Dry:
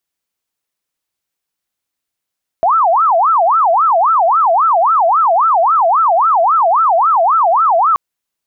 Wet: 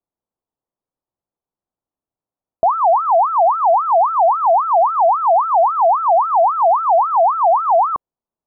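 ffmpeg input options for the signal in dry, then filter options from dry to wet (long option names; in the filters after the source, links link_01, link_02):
-f lavfi -i "aevalsrc='0.398*sin(2*PI*(999*t-341/(2*PI*3.7)*sin(2*PI*3.7*t)))':duration=5.33:sample_rate=44100"
-af "lowpass=frequency=1000:width=0.5412,lowpass=frequency=1000:width=1.3066"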